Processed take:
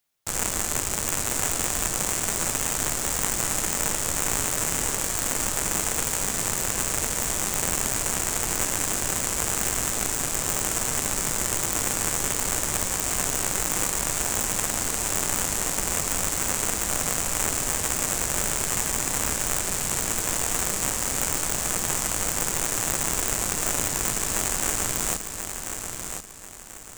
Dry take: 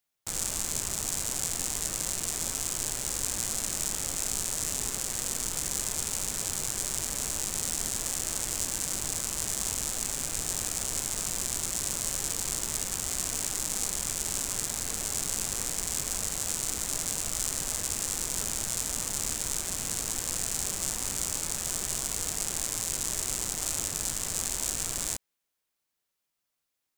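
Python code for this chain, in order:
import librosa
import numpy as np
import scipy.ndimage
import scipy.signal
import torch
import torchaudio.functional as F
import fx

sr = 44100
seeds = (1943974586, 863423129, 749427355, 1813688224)

y = fx.tracing_dist(x, sr, depth_ms=0.025)
y = fx.echo_feedback(y, sr, ms=1037, feedback_pct=34, wet_db=-7)
y = y * librosa.db_to_amplitude(5.5)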